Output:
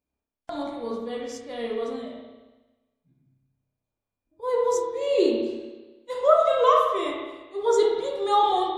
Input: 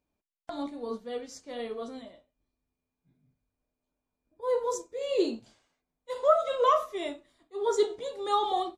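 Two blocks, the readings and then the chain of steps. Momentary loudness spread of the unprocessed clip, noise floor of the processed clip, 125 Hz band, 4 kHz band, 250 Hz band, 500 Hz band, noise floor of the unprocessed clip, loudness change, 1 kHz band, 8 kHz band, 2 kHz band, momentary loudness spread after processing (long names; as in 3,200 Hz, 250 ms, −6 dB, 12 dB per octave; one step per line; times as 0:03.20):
17 LU, below −85 dBFS, can't be measured, +4.5 dB, +6.0 dB, +6.0 dB, below −85 dBFS, +5.5 dB, +6.0 dB, +3.0 dB, +6.0 dB, 17 LU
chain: noise reduction from a noise print of the clip's start 8 dB
spring reverb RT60 1.2 s, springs 30/58 ms, chirp 35 ms, DRR −0.5 dB
level +3 dB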